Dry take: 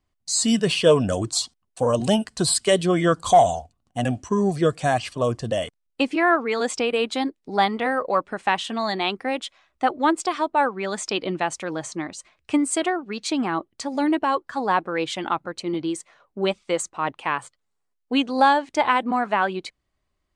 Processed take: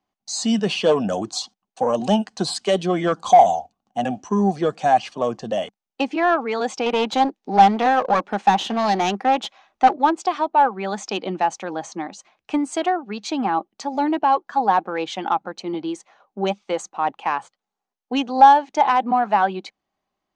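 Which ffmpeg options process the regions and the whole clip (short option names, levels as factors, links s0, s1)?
-filter_complex "[0:a]asettb=1/sr,asplit=3[s0][s1][s2];[s0]atrim=end=6.864[s3];[s1]atrim=start=6.86:end=9.96,asetpts=PTS-STARTPTS,afade=t=in:d=0.004:c=qsin,afade=t=out:st=3.096:d=0.004:c=qsin,acontrast=33,aeval=exprs='clip(val(0),-1,0.0562)':c=same[s4];[s2]atrim=start=9.956[s5];[s3][s4]acrossfade=d=0.004:c1=hsin:c2=qsin[s6];[s6][s5]acrossfade=d=0.004:c1=qsin:c2=hsin,acrossover=split=180 5300:gain=0.141 1 0.158[s7][s8][s9];[s7][s8][s9]amix=inputs=3:normalize=0,acontrast=83,equalizer=f=200:t=o:w=0.33:g=8,equalizer=f=800:t=o:w=0.33:g=11,equalizer=f=2000:t=o:w=0.33:g=-3,equalizer=f=6300:t=o:w=0.33:g=8,volume=0.422"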